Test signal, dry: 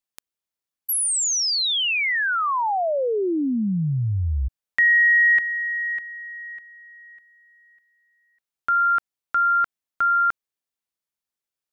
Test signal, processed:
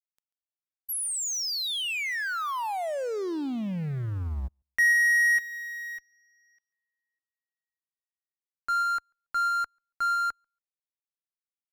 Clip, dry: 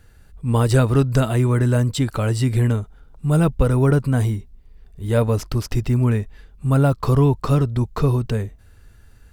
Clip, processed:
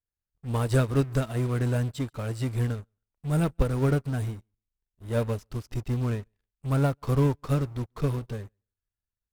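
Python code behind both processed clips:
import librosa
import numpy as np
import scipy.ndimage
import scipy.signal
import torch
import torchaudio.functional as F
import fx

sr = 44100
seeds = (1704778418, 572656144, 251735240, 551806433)

p1 = fx.law_mismatch(x, sr, coded='A')
p2 = fx.fuzz(p1, sr, gain_db=34.0, gate_db=-40.0)
p3 = p1 + (p2 * 10.0 ** (-9.0 / 20.0))
p4 = fx.echo_feedback(p3, sr, ms=140, feedback_pct=16, wet_db=-21.5)
p5 = fx.upward_expand(p4, sr, threshold_db=-31.0, expansion=2.5)
y = p5 * 10.0 ** (-7.0 / 20.0)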